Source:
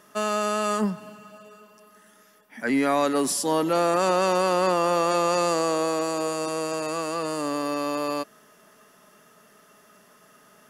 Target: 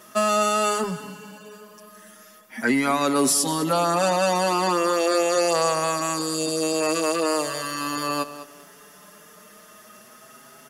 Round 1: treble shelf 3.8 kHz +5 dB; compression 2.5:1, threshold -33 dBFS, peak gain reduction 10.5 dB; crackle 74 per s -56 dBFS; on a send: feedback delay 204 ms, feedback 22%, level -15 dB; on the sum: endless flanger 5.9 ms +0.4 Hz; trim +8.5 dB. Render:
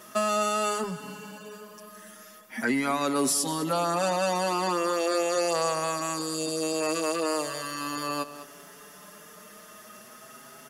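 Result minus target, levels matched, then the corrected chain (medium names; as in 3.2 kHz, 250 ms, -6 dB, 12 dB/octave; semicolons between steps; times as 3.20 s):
compression: peak gain reduction +5 dB
treble shelf 3.8 kHz +5 dB; compression 2.5:1, threshold -24.5 dBFS, peak gain reduction 5 dB; crackle 74 per s -56 dBFS; on a send: feedback delay 204 ms, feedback 22%, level -15 dB; on the sum: endless flanger 5.9 ms +0.4 Hz; trim +8.5 dB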